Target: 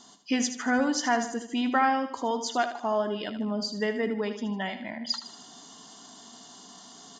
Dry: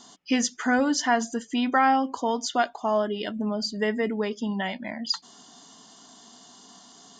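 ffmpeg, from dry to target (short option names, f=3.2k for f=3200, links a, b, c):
-af "areverse,acompressor=mode=upward:threshold=-39dB:ratio=2.5,areverse,aecho=1:1:77|154|231|308|385:0.316|0.142|0.064|0.0288|0.013,volume=-3dB"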